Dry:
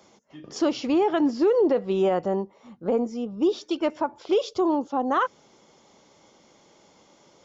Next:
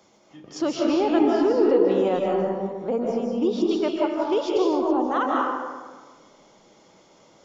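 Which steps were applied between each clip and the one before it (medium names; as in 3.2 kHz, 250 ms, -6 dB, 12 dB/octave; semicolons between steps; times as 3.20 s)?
algorithmic reverb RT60 1.5 s, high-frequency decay 0.5×, pre-delay 115 ms, DRR -2 dB; trim -2 dB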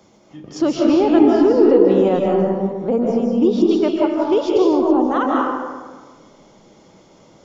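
bass shelf 330 Hz +10 dB; trim +2.5 dB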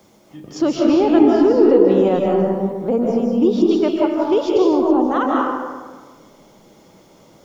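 bit crusher 10-bit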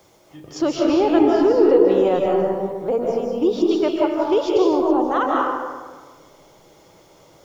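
peaking EQ 220 Hz -14 dB 0.55 oct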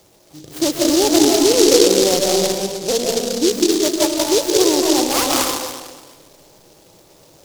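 delay time shaken by noise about 5 kHz, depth 0.17 ms; trim +2 dB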